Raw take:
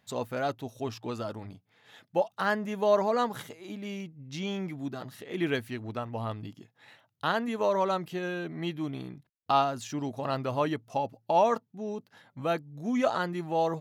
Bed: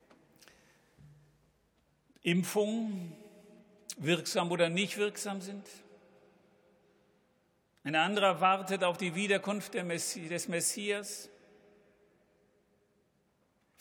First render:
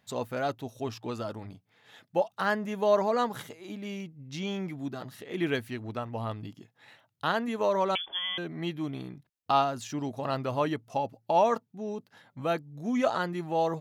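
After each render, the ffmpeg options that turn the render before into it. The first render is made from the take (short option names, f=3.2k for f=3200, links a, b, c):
-filter_complex "[0:a]asettb=1/sr,asplit=3[a][b][c];[a]atrim=end=7.954[d];[b]atrim=start=7.95:end=8.38,asetpts=PTS-STARTPTS,afade=t=in:d=0.004:c=qsin,afade=t=out:st=0.426:d=0.004:c=qsin,lowpass=f=3.1k:t=q:w=0.5098,lowpass=f=3.1k:t=q:w=0.6013,lowpass=f=3.1k:t=q:w=0.9,lowpass=f=3.1k:t=q:w=2.563,afreqshift=-3600[e];[c]atrim=start=8.376[f];[d][e]acrossfade=d=0.004:c1=hsin:c2=qsin[g];[g][f]acrossfade=d=0.004:c1=qsin:c2=hsin"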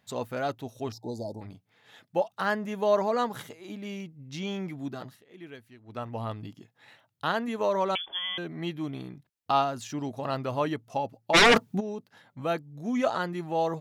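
-filter_complex "[0:a]asettb=1/sr,asplit=3[a][b][c];[a]atrim=end=0.924[d];[b]atrim=start=0.92:end=1.41,asetpts=PTS-STARTPTS,afade=t=in:d=0.004:c=qsin,afade=t=out:st=0.486:d=0.004:c=qsin,asuperstop=centerf=1900:order=20:qfactor=0.63[e];[c]atrim=start=1.406[f];[d][e]acrossfade=d=0.004:c1=hsin:c2=qsin[g];[g][f]acrossfade=d=0.004:c1=qsin:c2=hsin,asplit=3[h][i][j];[h]afade=t=out:st=11.33:d=0.02[k];[i]aeval=exprs='0.211*sin(PI/2*4.47*val(0)/0.211)':c=same,afade=t=in:st=11.33:d=0.02,afade=t=out:st=11.79:d=0.02[l];[j]afade=t=in:st=11.79:d=0.02[m];[k][l][m]amix=inputs=3:normalize=0,asplit=3[n][o][p];[n]atrim=end=5.2,asetpts=PTS-STARTPTS,afade=t=out:st=5.04:d=0.16:silence=0.158489[q];[o]atrim=start=5.2:end=5.86,asetpts=PTS-STARTPTS,volume=-16dB[r];[p]atrim=start=5.86,asetpts=PTS-STARTPTS,afade=t=in:d=0.16:silence=0.158489[s];[q][r][s]concat=n=3:v=0:a=1"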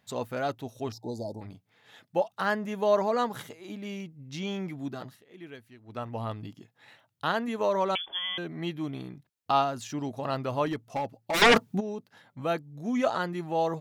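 -filter_complex "[0:a]asettb=1/sr,asplit=3[a][b][c];[a]atrim=end=10.664[d];[b]atrim=start=10.66:end=11.42,asetpts=PTS-STARTPTS,afade=t=in:d=0.004:c=qsin,afade=t=out:st=0.756:d=0.004:c=qsin,asoftclip=type=hard:threshold=-25.5dB[e];[c]atrim=start=11.416[f];[d][e]acrossfade=d=0.004:c1=hsin:c2=qsin[g];[g][f]acrossfade=d=0.004:c1=qsin:c2=hsin"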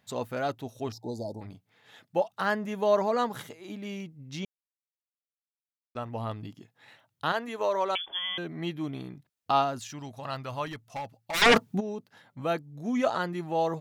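-filter_complex "[0:a]asettb=1/sr,asplit=3[a][b][c];[a]atrim=end=7.324[d];[b]atrim=start=7.32:end=8.05,asetpts=PTS-STARTPTS,afade=t=in:d=0.004:c=qsin,afade=t=out:st=0.726:d=0.004:c=qsin,equalizer=f=170:t=o:w=1.2:g=-12.5[e];[c]atrim=start=8.046[f];[d][e]acrossfade=d=0.004:c1=hsin:c2=qsin[g];[g][f]acrossfade=d=0.004:c1=qsin:c2=hsin,asettb=1/sr,asplit=3[h][i][j];[h]atrim=end=9.794[k];[i]atrim=start=9.79:end=11.46,asetpts=PTS-STARTPTS,afade=t=in:d=0.004:c=qsin,afade=t=out:st=1.666:d=0.004:c=qsin,equalizer=f=350:t=o:w=2.1:g=-10.5[l];[j]atrim=start=11.456[m];[k][l]acrossfade=d=0.004:c1=hsin:c2=qsin[n];[n][m]acrossfade=d=0.004:c1=qsin:c2=hsin,asplit=3[o][p][q];[o]atrim=end=4.45,asetpts=PTS-STARTPTS,afade=t=out:st=4.446:d=0.004:c=hsin[r];[p]atrim=start=4.45:end=5.95,asetpts=PTS-STARTPTS,volume=0[s];[q]atrim=start=5.95,asetpts=PTS-STARTPTS,afade=t=in:d=0.004:c=hsin[t];[r][s][t]concat=n=3:v=0:a=1"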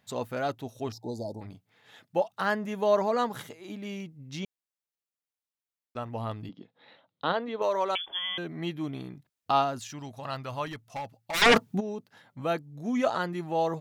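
-filter_complex "[0:a]asettb=1/sr,asplit=3[a][b][c];[a]atrim=end=6.494[d];[b]atrim=start=6.49:end=7.62,asetpts=PTS-STARTPTS,afade=t=in:d=0.004:c=qsin,afade=t=out:st=1.126:d=0.004:c=qsin,highpass=190,equalizer=f=190:t=q:w=4:g=7,equalizer=f=280:t=q:w=4:g=4,equalizer=f=510:t=q:w=4:g=8,equalizer=f=1.7k:t=q:w=4:g=-5,equalizer=f=2.6k:t=q:w=4:g=-5,equalizer=f=3.8k:t=q:w=4:g=5,lowpass=f=3.9k:w=0.5412,lowpass=f=3.9k:w=1.3066[e];[c]atrim=start=7.616[f];[d][e]acrossfade=d=0.004:c1=hsin:c2=qsin[g];[g][f]acrossfade=d=0.004:c1=qsin:c2=hsin"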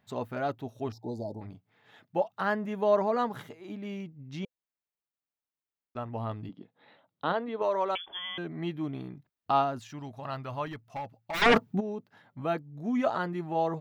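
-af "equalizer=f=9.1k:t=o:w=2.4:g=-12,bandreject=f=510:w=12"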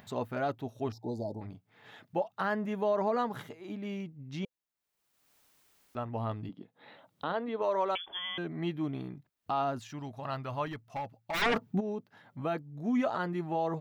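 -af "alimiter=limit=-21dB:level=0:latency=1:release=90,acompressor=mode=upward:threshold=-46dB:ratio=2.5"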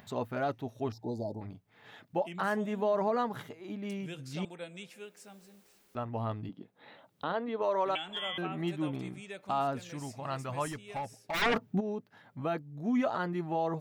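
-filter_complex "[1:a]volume=-15dB[a];[0:a][a]amix=inputs=2:normalize=0"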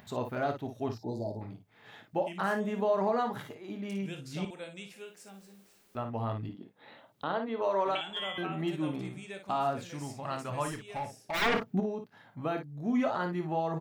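-af "aecho=1:1:26|56:0.282|0.398"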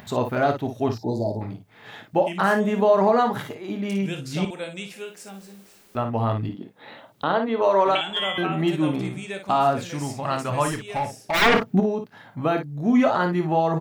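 -af "volume=10.5dB"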